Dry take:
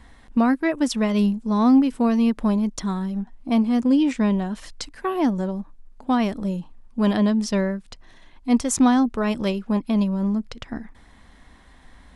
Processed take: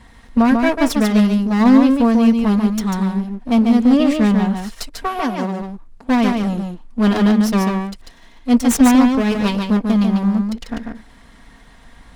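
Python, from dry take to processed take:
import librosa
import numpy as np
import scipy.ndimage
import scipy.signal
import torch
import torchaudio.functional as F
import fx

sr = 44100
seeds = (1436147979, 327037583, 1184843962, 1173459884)

y = fx.lower_of_two(x, sr, delay_ms=4.3)
y = fx.highpass(y, sr, hz=fx.line((5.2, 380.0), (5.6, 160.0)), slope=12, at=(5.2, 5.6), fade=0.02)
y = y + 10.0 ** (-4.5 / 20.0) * np.pad(y, (int(144 * sr / 1000.0), 0))[:len(y)]
y = y * librosa.db_to_amplitude(5.0)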